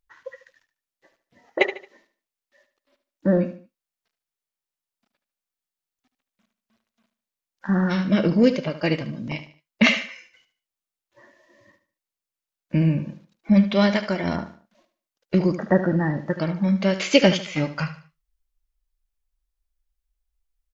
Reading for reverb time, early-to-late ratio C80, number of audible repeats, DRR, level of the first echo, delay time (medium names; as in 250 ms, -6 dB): no reverb, no reverb, 3, no reverb, -12.0 dB, 74 ms